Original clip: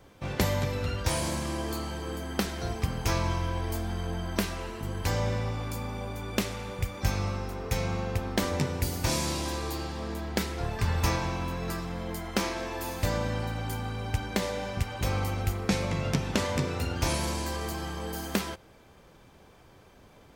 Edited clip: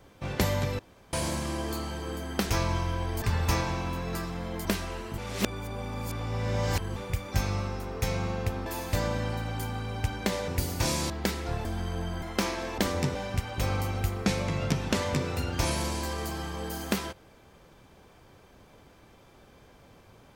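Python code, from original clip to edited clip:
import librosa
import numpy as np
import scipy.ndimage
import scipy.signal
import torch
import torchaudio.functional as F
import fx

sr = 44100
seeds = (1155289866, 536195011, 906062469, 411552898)

y = fx.edit(x, sr, fx.room_tone_fill(start_s=0.79, length_s=0.34),
    fx.cut(start_s=2.5, length_s=0.55),
    fx.swap(start_s=3.77, length_s=0.57, other_s=10.77, other_length_s=1.43),
    fx.reverse_span(start_s=4.87, length_s=1.78),
    fx.swap(start_s=8.35, length_s=0.37, other_s=12.76, other_length_s=1.82),
    fx.cut(start_s=9.34, length_s=0.88), tone=tone)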